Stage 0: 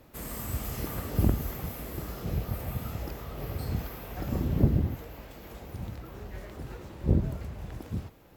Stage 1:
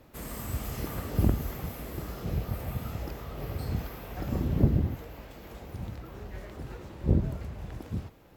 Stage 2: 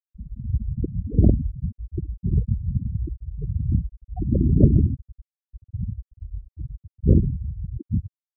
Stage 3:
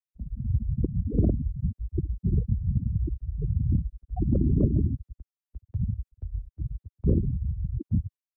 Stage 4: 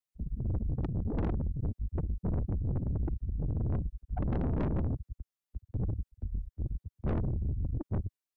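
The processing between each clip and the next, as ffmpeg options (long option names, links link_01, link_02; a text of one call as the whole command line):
ffmpeg -i in.wav -af "highshelf=frequency=8700:gain=-4.5" out.wav
ffmpeg -i in.wav -filter_complex "[0:a]afftfilt=real='re*gte(hypot(re,im),0.0794)':imag='im*gte(hypot(re,im),0.0794)':win_size=1024:overlap=0.75,asplit=2[link_01][link_02];[link_02]alimiter=limit=-18dB:level=0:latency=1:release=469,volume=-2.5dB[link_03];[link_01][link_03]amix=inputs=2:normalize=0,volume=5.5dB" out.wav
ffmpeg -i in.wav -filter_complex "[0:a]agate=range=-9dB:threshold=-41dB:ratio=16:detection=peak,acrossover=split=96|290[link_01][link_02][link_03];[link_01]acompressor=threshold=-26dB:ratio=4[link_04];[link_02]acompressor=threshold=-27dB:ratio=4[link_05];[link_03]acompressor=threshold=-30dB:ratio=4[link_06];[link_04][link_05][link_06]amix=inputs=3:normalize=0,volume=1dB" out.wav
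ffmpeg -i in.wav -af "aeval=exprs='(tanh(35.5*val(0)+0.45)-tanh(0.45))/35.5':channel_layout=same,volume=2.5dB" out.wav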